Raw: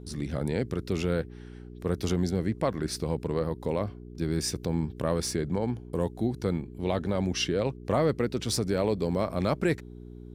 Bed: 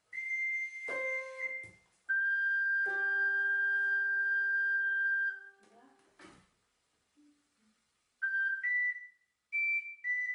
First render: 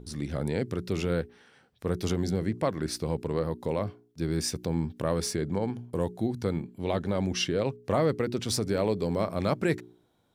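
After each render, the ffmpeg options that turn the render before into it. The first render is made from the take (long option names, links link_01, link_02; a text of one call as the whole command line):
ffmpeg -i in.wav -af "bandreject=frequency=60:width_type=h:width=4,bandreject=frequency=120:width_type=h:width=4,bandreject=frequency=180:width_type=h:width=4,bandreject=frequency=240:width_type=h:width=4,bandreject=frequency=300:width_type=h:width=4,bandreject=frequency=360:width_type=h:width=4,bandreject=frequency=420:width_type=h:width=4" out.wav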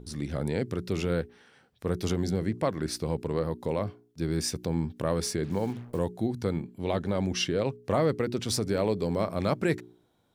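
ffmpeg -i in.wav -filter_complex "[0:a]asplit=3[link_01][link_02][link_03];[link_01]afade=type=out:start_time=5.43:duration=0.02[link_04];[link_02]acrusher=bits=7:mix=0:aa=0.5,afade=type=in:start_time=5.43:duration=0.02,afade=type=out:start_time=5.98:duration=0.02[link_05];[link_03]afade=type=in:start_time=5.98:duration=0.02[link_06];[link_04][link_05][link_06]amix=inputs=3:normalize=0" out.wav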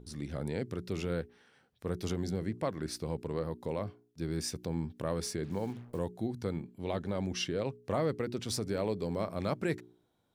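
ffmpeg -i in.wav -af "volume=-6dB" out.wav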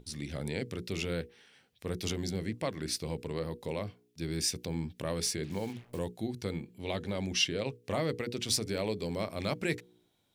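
ffmpeg -i in.wav -af "highshelf=frequency=1800:width_type=q:width=1.5:gain=6.5,bandreject=frequency=60:width_type=h:width=6,bandreject=frequency=120:width_type=h:width=6,bandreject=frequency=180:width_type=h:width=6,bandreject=frequency=240:width_type=h:width=6,bandreject=frequency=300:width_type=h:width=6,bandreject=frequency=360:width_type=h:width=6,bandreject=frequency=420:width_type=h:width=6,bandreject=frequency=480:width_type=h:width=6" out.wav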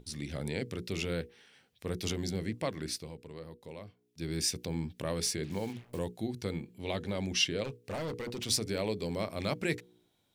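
ffmpeg -i in.wav -filter_complex "[0:a]asettb=1/sr,asplit=3[link_01][link_02][link_03];[link_01]atrim=end=7.644[link_04];[link_02]atrim=start=7.64:end=8.46,asetpts=PTS-STARTPTS,afade=type=in:duration=0.004:curve=qsin,afade=type=out:start_time=0.816:duration=0.004:curve=qsin,asoftclip=type=hard:threshold=-33.5dB[link_05];[link_03]atrim=start=8.456[link_06];[link_04][link_05]acrossfade=duration=0.004:curve1=hsin:curve2=qsin[link_07];[link_07][link_06]acrossfade=duration=0.004:curve1=qsin:curve2=hsin,asplit=3[link_08][link_09][link_10];[link_08]atrim=end=3.12,asetpts=PTS-STARTPTS,afade=type=out:start_time=2.65:duration=0.47:curve=qsin:silence=0.316228[link_11];[link_09]atrim=start=3.12:end=3.96,asetpts=PTS-STARTPTS,volume=-10dB[link_12];[link_10]atrim=start=3.96,asetpts=PTS-STARTPTS,afade=type=in:duration=0.47:curve=qsin:silence=0.316228[link_13];[link_11][link_12][link_13]concat=n=3:v=0:a=1" out.wav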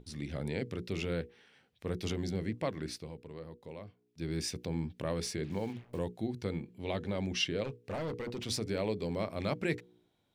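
ffmpeg -i in.wav -af "highshelf=frequency=4400:gain=-11" out.wav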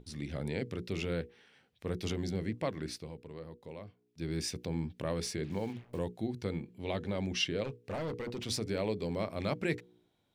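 ffmpeg -i in.wav -af anull out.wav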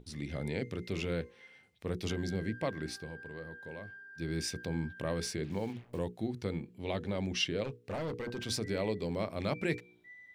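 ffmpeg -i in.wav -i bed.wav -filter_complex "[1:a]volume=-19.5dB[link_01];[0:a][link_01]amix=inputs=2:normalize=0" out.wav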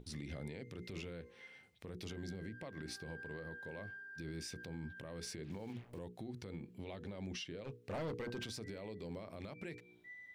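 ffmpeg -i in.wav -af "acompressor=threshold=-38dB:ratio=10,alimiter=level_in=12dB:limit=-24dB:level=0:latency=1:release=62,volume=-12dB" out.wav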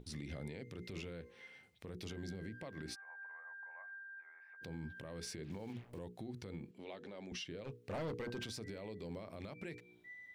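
ffmpeg -i in.wav -filter_complex "[0:a]asplit=3[link_01][link_02][link_03];[link_01]afade=type=out:start_time=2.94:duration=0.02[link_04];[link_02]asuperpass=centerf=1200:order=8:qfactor=1,afade=type=in:start_time=2.94:duration=0.02,afade=type=out:start_time=4.61:duration=0.02[link_05];[link_03]afade=type=in:start_time=4.61:duration=0.02[link_06];[link_04][link_05][link_06]amix=inputs=3:normalize=0,asettb=1/sr,asplit=3[link_07][link_08][link_09];[link_07]atrim=end=6.714[link_10];[link_08]atrim=start=6.71:end=7.32,asetpts=PTS-STARTPTS,afade=type=in:duration=0.004:curve=qsin,afade=type=out:start_time=0.606:duration=0.004:curve=qsin,highpass=270,lowpass=8000[link_11];[link_09]atrim=start=7.316[link_12];[link_10][link_11]acrossfade=duration=0.004:curve1=hsin:curve2=qsin[link_13];[link_13][link_12]acrossfade=duration=0.004:curve1=qsin:curve2=hsin" out.wav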